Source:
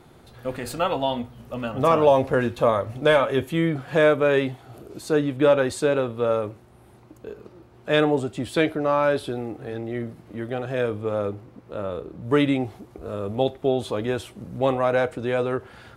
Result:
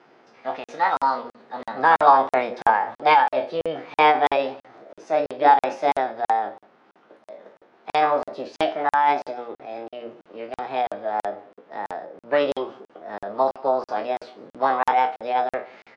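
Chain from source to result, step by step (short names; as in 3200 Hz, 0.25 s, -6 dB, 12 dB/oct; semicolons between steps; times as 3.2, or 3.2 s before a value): spectral trails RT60 0.30 s; notches 60/120/180/240/300/360/420/480/540/600 Hz; dynamic EQ 710 Hz, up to +7 dB, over -35 dBFS, Q 1.6; formant shift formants +6 st; Bessel high-pass 310 Hz, order 4; air absorption 200 m; echo 0.185 s -24 dB; crackling interface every 0.33 s, samples 2048, zero, from 0.64; MP3 144 kbps 24000 Hz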